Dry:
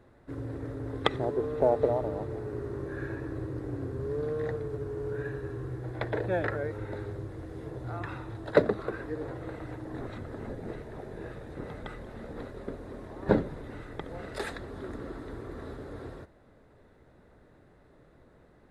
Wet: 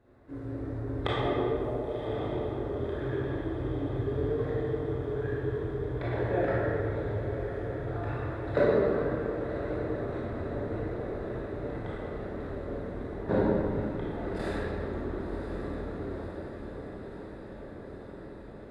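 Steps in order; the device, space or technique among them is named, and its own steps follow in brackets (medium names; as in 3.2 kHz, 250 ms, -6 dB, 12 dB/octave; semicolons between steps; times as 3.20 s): 1.54–2.05 s: pre-emphasis filter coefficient 0.8; swimming-pool hall (reverberation RT60 2.5 s, pre-delay 20 ms, DRR -8.5 dB; treble shelf 4.7 kHz -6.5 dB); echo that smears into a reverb 1052 ms, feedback 74%, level -10 dB; trim -8 dB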